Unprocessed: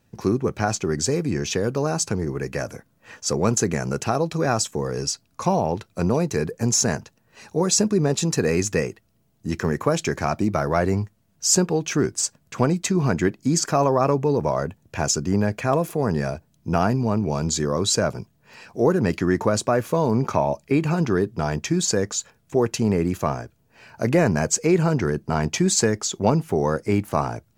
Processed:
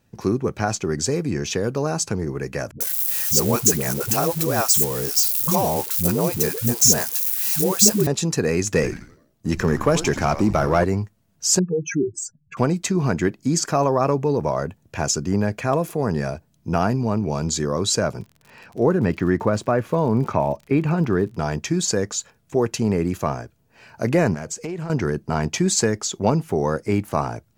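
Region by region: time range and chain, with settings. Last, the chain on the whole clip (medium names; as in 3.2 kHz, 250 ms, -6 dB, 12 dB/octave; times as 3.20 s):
2.71–8.07 s: zero-crossing glitches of -21.5 dBFS + treble shelf 8.4 kHz +11 dB + phase dispersion highs, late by 96 ms, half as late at 350 Hz
8.67–10.84 s: frequency-shifting echo 85 ms, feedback 49%, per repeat -150 Hz, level -13 dB + waveshaping leveller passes 1
11.59–12.57 s: spectral contrast enhancement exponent 3.4 + de-esser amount 45%
18.19–21.35 s: tone controls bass +2 dB, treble -11 dB + crackle 65 per s -35 dBFS
24.34–24.90 s: compression 12:1, threshold -25 dBFS + loudspeaker Doppler distortion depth 0.16 ms
whole clip: none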